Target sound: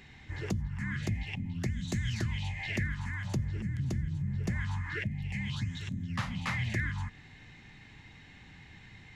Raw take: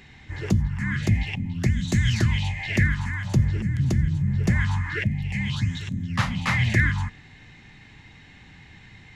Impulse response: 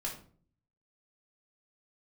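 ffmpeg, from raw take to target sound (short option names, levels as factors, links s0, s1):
-af "acompressor=threshold=0.0316:ratio=2,volume=0.596"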